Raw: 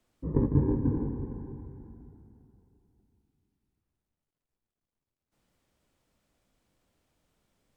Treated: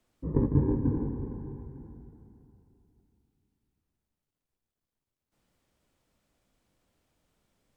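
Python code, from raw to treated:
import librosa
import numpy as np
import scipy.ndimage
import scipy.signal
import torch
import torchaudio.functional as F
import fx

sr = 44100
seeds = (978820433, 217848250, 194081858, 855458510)

y = x + 10.0 ** (-23.0 / 20.0) * np.pad(x, (int(902 * sr / 1000.0), 0))[:len(x)]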